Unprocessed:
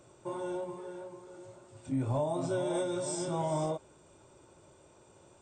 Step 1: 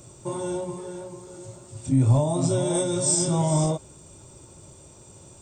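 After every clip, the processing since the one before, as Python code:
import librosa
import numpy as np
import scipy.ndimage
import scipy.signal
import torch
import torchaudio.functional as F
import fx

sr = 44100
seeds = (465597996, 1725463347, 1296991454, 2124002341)

y = fx.bass_treble(x, sr, bass_db=11, treble_db=13)
y = fx.notch(y, sr, hz=1500.0, q=18.0)
y = F.gain(torch.from_numpy(y), 5.0).numpy()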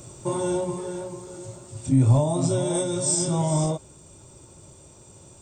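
y = fx.rider(x, sr, range_db=4, speed_s=2.0)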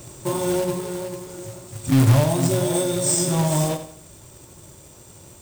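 y = fx.quant_companded(x, sr, bits=4)
y = fx.echo_feedback(y, sr, ms=86, feedback_pct=39, wet_db=-11)
y = F.gain(torch.from_numpy(y), 2.0).numpy()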